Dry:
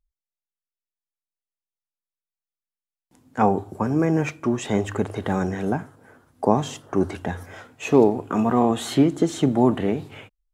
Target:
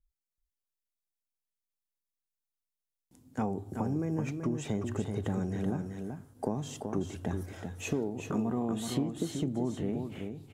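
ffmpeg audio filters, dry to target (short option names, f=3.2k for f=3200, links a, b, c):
-af "equalizer=f=1.3k:w=0.36:g=-11.5,acompressor=threshold=-29dB:ratio=6,aecho=1:1:380:0.501,adynamicequalizer=threshold=0.00251:dfrequency=3000:dqfactor=0.7:tfrequency=3000:tqfactor=0.7:attack=5:release=100:ratio=0.375:range=2:mode=cutabove:tftype=highshelf"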